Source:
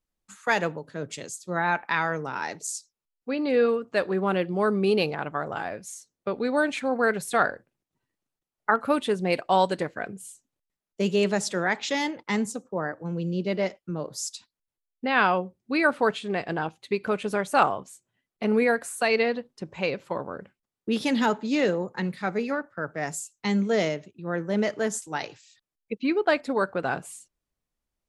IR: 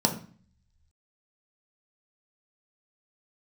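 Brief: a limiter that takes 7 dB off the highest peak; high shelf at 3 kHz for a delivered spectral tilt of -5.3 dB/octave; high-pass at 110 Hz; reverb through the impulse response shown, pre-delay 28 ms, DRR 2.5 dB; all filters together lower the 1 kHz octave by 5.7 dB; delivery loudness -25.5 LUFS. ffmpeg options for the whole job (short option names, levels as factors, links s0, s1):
-filter_complex "[0:a]highpass=110,equalizer=f=1000:t=o:g=-8.5,highshelf=f=3000:g=3.5,alimiter=limit=0.15:level=0:latency=1,asplit=2[s0][s1];[1:a]atrim=start_sample=2205,adelay=28[s2];[s1][s2]afir=irnorm=-1:irlink=0,volume=0.2[s3];[s0][s3]amix=inputs=2:normalize=0,volume=0.944"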